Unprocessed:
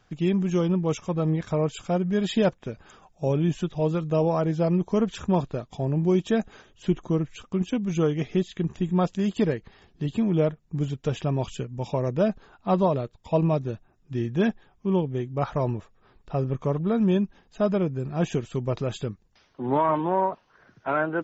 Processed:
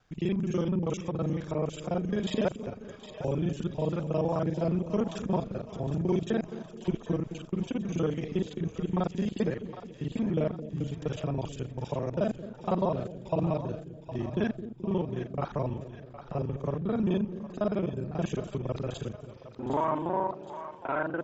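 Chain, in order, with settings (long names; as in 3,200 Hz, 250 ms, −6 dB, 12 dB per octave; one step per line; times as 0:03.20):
reversed piece by piece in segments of 36 ms
echo with a time of its own for lows and highs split 530 Hz, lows 215 ms, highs 763 ms, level −11.5 dB
level −5.5 dB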